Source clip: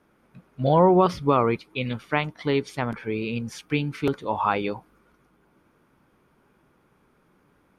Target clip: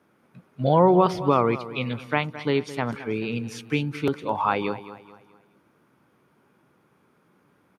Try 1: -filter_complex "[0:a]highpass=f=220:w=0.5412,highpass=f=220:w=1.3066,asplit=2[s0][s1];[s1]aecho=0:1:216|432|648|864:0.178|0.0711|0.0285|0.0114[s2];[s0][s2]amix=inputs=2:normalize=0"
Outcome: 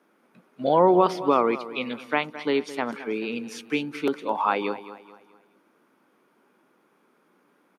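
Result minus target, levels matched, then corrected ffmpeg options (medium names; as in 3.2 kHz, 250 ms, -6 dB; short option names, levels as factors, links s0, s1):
125 Hz band -11.0 dB
-filter_complex "[0:a]highpass=f=89:w=0.5412,highpass=f=89:w=1.3066,asplit=2[s0][s1];[s1]aecho=0:1:216|432|648|864:0.178|0.0711|0.0285|0.0114[s2];[s0][s2]amix=inputs=2:normalize=0"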